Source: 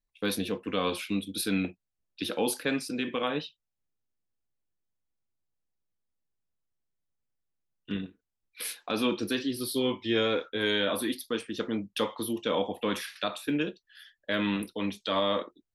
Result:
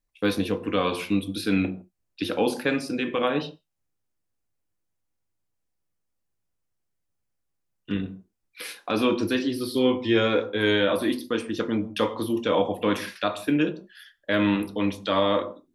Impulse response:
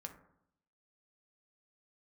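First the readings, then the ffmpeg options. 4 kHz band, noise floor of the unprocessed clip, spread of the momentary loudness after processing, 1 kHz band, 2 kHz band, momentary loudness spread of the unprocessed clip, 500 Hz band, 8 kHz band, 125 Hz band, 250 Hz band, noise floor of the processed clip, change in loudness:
+1.5 dB, −85 dBFS, 9 LU, +5.5 dB, +4.5 dB, 9 LU, +6.0 dB, −4.0 dB, +7.0 dB, +6.5 dB, −78 dBFS, +5.5 dB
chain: -filter_complex "[0:a]acrossover=split=5200[link_01][link_02];[link_02]acompressor=threshold=-47dB:ratio=4:attack=1:release=60[link_03];[link_01][link_03]amix=inputs=2:normalize=0,equalizer=frequency=3600:width_type=o:width=0.69:gain=-4,asplit=2[link_04][link_05];[1:a]atrim=start_sample=2205,atrim=end_sample=4410,asetrate=26019,aresample=44100[link_06];[link_05][link_06]afir=irnorm=-1:irlink=0,volume=1.5dB[link_07];[link_04][link_07]amix=inputs=2:normalize=0"

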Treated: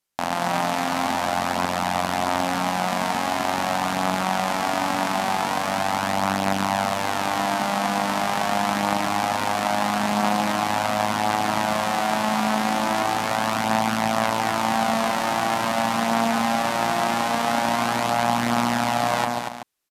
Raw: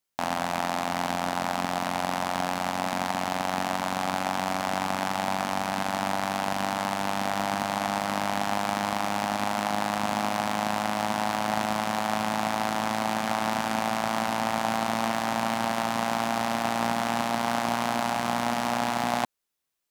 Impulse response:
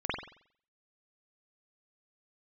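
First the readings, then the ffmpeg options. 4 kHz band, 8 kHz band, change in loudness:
+5.0 dB, +5.0 dB, +5.0 dB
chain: -filter_complex "[0:a]asplit=2[link_01][link_02];[link_02]aecho=0:1:236:0.531[link_03];[link_01][link_03]amix=inputs=2:normalize=0,aresample=32000,aresample=44100,asplit=2[link_04][link_05];[link_05]aecho=0:1:144:0.473[link_06];[link_04][link_06]amix=inputs=2:normalize=0,volume=3dB"

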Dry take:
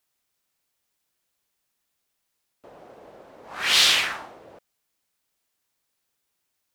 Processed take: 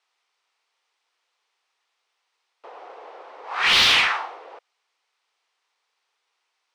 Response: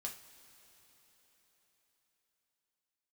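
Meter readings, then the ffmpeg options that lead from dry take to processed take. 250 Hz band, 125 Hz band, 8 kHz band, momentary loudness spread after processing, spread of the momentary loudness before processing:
+3.0 dB, can't be measured, −5.0 dB, 19 LU, 14 LU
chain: -filter_complex "[0:a]highpass=frequency=460:width=0.5412,highpass=frequency=460:width=1.3066,equalizer=frequency=600:width_type=q:width=4:gain=-10,equalizer=frequency=1600:width_type=q:width=4:gain=-5,equalizer=frequency=7100:width_type=q:width=4:gain=-5,lowpass=frequency=7800:width=0.5412,lowpass=frequency=7800:width=1.3066,asplit=2[link_01][link_02];[link_02]highpass=frequency=720:poles=1,volume=11dB,asoftclip=type=tanh:threshold=-12.5dB[link_03];[link_01][link_03]amix=inputs=2:normalize=0,lowpass=frequency=1600:poles=1,volume=-6dB,volume=7.5dB"

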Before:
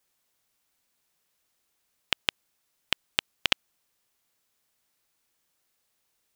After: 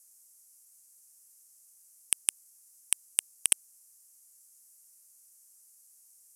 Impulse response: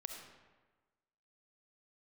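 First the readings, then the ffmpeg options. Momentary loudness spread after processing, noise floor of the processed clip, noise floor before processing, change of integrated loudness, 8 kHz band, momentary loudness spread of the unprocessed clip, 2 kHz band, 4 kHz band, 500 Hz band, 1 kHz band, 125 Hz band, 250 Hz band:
5 LU, −61 dBFS, −76 dBFS, +0.5 dB, +17.5 dB, 5 LU, −11.5 dB, −11.0 dB, below −10 dB, −14.5 dB, below −10 dB, below −10 dB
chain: -af "asoftclip=type=hard:threshold=-10.5dB,aexciter=amount=11.3:drive=9:freq=5600,lowpass=frequency=12000:width=0.5412,lowpass=frequency=12000:width=1.3066,volume=-6.5dB"

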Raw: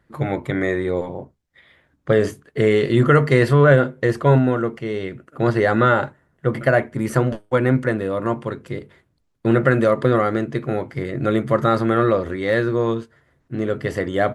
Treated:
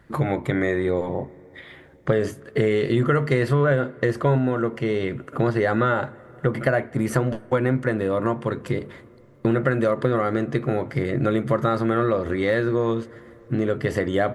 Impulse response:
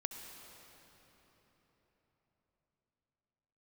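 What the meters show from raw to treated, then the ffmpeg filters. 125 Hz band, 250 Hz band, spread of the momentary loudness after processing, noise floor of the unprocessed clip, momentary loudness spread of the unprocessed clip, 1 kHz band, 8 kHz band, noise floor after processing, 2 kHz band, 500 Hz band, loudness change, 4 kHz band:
−3.5 dB, −2.5 dB, 8 LU, −66 dBFS, 12 LU, −4.0 dB, can't be measured, −49 dBFS, −4.0 dB, −3.5 dB, −3.5 dB, −3.5 dB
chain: -filter_complex "[0:a]acompressor=threshold=-31dB:ratio=3,asplit=2[link_01][link_02];[1:a]atrim=start_sample=2205,lowpass=3100[link_03];[link_02][link_03]afir=irnorm=-1:irlink=0,volume=-16dB[link_04];[link_01][link_04]amix=inputs=2:normalize=0,volume=8dB"

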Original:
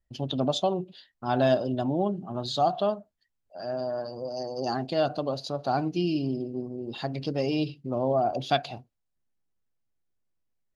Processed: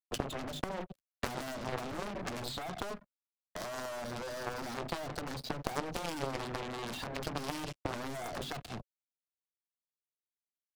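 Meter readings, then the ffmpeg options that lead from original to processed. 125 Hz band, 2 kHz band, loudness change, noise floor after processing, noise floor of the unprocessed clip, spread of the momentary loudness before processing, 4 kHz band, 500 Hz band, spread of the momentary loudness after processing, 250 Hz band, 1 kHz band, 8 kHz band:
−10.5 dB, −1.5 dB, −11.0 dB, below −85 dBFS, −79 dBFS, 10 LU, −7.0 dB, −13.0 dB, 5 LU, −12.5 dB, −10.5 dB, can't be measured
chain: -filter_complex "[0:a]asplit=2[link_01][link_02];[link_02]acompressor=threshold=-36dB:ratio=6,volume=1dB[link_03];[link_01][link_03]amix=inputs=2:normalize=0,highpass=79,equalizer=frequency=200:width_type=o:width=0.37:gain=5.5,bandreject=frequency=50:width_type=h:width=6,bandreject=frequency=100:width_type=h:width=6,bandreject=frequency=150:width_type=h:width=6,bandreject=frequency=200:width_type=h:width=6,bandreject=frequency=250:width_type=h:width=6,agate=range=-8dB:threshold=-39dB:ratio=16:detection=peak,alimiter=limit=-18.5dB:level=0:latency=1:release=307,acrusher=bits=5:mix=0:aa=0.5,volume=28.5dB,asoftclip=hard,volume=-28.5dB,acrossover=split=120|470|3600[link_04][link_05][link_06][link_07];[link_04]acompressor=threshold=-54dB:ratio=4[link_08];[link_05]acompressor=threshold=-39dB:ratio=4[link_09];[link_06]acompressor=threshold=-43dB:ratio=4[link_10];[link_07]acompressor=threshold=-50dB:ratio=4[link_11];[link_08][link_09][link_10][link_11]amix=inputs=4:normalize=0,lowshelf=frequency=110:gain=12,bandreject=frequency=550:width=12,aeval=exprs='0.0562*(cos(1*acos(clip(val(0)/0.0562,-1,1)))-cos(1*PI/2))+0.0282*(cos(3*acos(clip(val(0)/0.0562,-1,1)))-cos(3*PI/2))+0.00141*(cos(4*acos(clip(val(0)/0.0562,-1,1)))-cos(4*PI/2))':channel_layout=same,volume=7.5dB"

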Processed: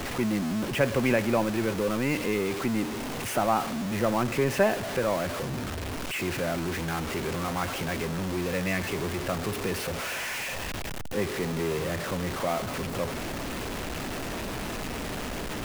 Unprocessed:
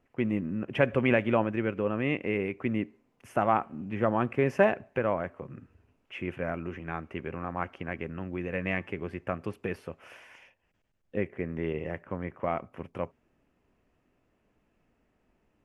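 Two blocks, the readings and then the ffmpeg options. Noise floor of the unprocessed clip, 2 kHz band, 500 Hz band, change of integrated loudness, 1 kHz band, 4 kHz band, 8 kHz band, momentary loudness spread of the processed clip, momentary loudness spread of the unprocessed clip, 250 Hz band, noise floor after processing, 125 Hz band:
−74 dBFS, +3.5 dB, +2.0 dB, +1.5 dB, +2.5 dB, +13.5 dB, can't be measured, 8 LU, 13 LU, +3.0 dB, −34 dBFS, +3.5 dB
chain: -filter_complex "[0:a]aeval=exprs='val(0)+0.5*0.0531*sgn(val(0))':channel_layout=same,acrossover=split=110|1600[link_01][link_02][link_03];[link_02]acrusher=bits=6:mix=0:aa=0.000001[link_04];[link_01][link_04][link_03]amix=inputs=3:normalize=0,volume=-2dB"

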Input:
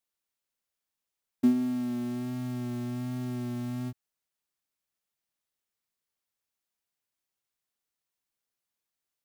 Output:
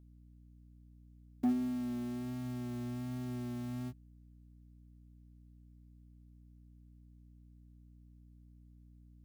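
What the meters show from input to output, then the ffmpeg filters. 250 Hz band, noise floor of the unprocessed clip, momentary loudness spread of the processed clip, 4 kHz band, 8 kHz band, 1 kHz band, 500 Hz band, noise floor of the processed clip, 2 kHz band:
−6.5 dB, below −85 dBFS, 8 LU, −6.5 dB, −6.0 dB, −3.5 dB, −6.5 dB, −59 dBFS, −6.0 dB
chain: -af "asoftclip=type=hard:threshold=-20dB,aeval=exprs='val(0)+0.00282*(sin(2*PI*60*n/s)+sin(2*PI*2*60*n/s)/2+sin(2*PI*3*60*n/s)/3+sin(2*PI*4*60*n/s)/4+sin(2*PI*5*60*n/s)/5)':channel_layout=same,volume=-6dB"

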